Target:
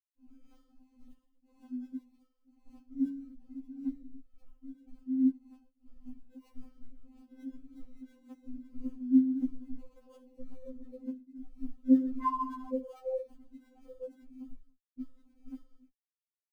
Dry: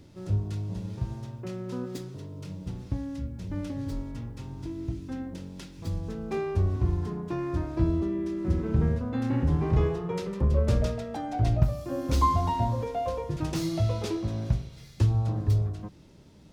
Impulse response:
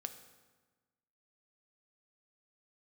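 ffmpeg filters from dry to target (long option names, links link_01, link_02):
-filter_complex "[0:a]asettb=1/sr,asplit=3[link_01][link_02][link_03];[link_01]atrim=end=3.674[link_04];[link_02]atrim=start=3.67:end=4.36,asetpts=PTS-STARTPTS,afade=type=in:duration=0.004:curve=qsin,afade=type=out:start_time=0.686:duration=0.004:curve=qsin,equalizer=frequency=620:width=0.35:gain=-4.5[link_05];[link_03]atrim=start=4.356[link_06];[link_04][link_05]acrossfade=duration=0.004:curve1=hsin:curve2=qsin[link_07];[link_07][link_06]acrossfade=duration=0.004:curve1=qsin:curve2=hsin,asettb=1/sr,asplit=3[link_08][link_09][link_10];[link_08]atrim=end=7.214[link_11];[link_09]atrim=start=7.21:end=8.03,asetpts=PTS-STARTPTS,afade=type=in:duration=0.004:curve=qsin,afade=type=out:start_time=0.816:duration=0.004:curve=qsin,lowpass=1100[link_12];[link_10]atrim=start=8.026[link_13];[link_11][link_12]acrossfade=duration=0.004:curve1=hsin:curve2=qsin[link_14];[link_14][link_13]acrossfade=duration=0.004:curve1=qsin:curve2=hsin,asettb=1/sr,asplit=3[link_15][link_16][link_17];[link_15]atrim=end=11.644[link_18];[link_16]atrim=start=11.64:end=12.32,asetpts=PTS-STARTPTS,afade=type=in:duration=0.004:curve=qsin,afade=type=out:start_time=0.676:duration=0.004:curve=qsin,acontrast=64[link_19];[link_17]atrim=start=12.316[link_20];[link_18][link_19]acrossfade=duration=0.004:curve1=hsin:curve2=qsin[link_21];[link_21][link_20]acrossfade=duration=0.004:curve1=qsin:curve2=hsin,aecho=1:1:136|272:0.0708|0.0255[link_22];[1:a]atrim=start_sample=2205,afade=type=out:start_time=0.29:duration=0.01,atrim=end_sample=13230[link_23];[link_22][link_23]afir=irnorm=-1:irlink=0,afwtdn=0.0355,lowshelf=frequency=320:gain=6,asoftclip=type=tanh:threshold=-22dB,afftfilt=real='re*gte(hypot(re,im),0.1)':imag='im*gte(hypot(re,im),0.1)':win_size=1024:overlap=0.75,acompressor=threshold=-30dB:ratio=6,aphaser=in_gain=1:out_gain=1:delay=3.8:decay=0.73:speed=1.8:type=triangular,afftfilt=real='re*3.46*eq(mod(b,12),0)':imag='im*3.46*eq(mod(b,12),0)':win_size=2048:overlap=0.75"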